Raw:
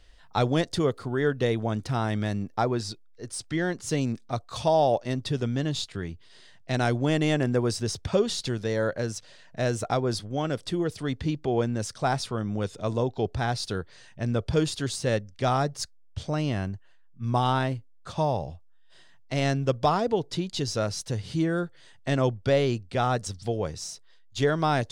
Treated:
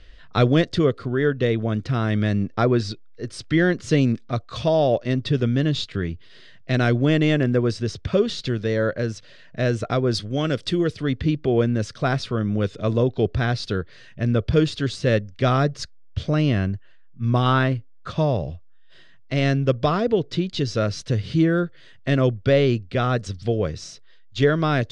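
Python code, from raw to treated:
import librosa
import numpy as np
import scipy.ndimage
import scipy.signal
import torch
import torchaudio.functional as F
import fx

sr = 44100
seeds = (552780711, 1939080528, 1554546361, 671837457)

y = fx.high_shelf(x, sr, hz=3700.0, db=10.5, at=(10.14, 10.92))
y = fx.peak_eq(y, sr, hz=1200.0, db=4.5, octaves=1.0, at=(17.46, 18.11))
y = scipy.signal.sosfilt(scipy.signal.butter(2, 3700.0, 'lowpass', fs=sr, output='sos'), y)
y = fx.peak_eq(y, sr, hz=850.0, db=-14.5, octaves=0.45)
y = fx.rider(y, sr, range_db=10, speed_s=2.0)
y = F.gain(torch.from_numpy(y), 6.0).numpy()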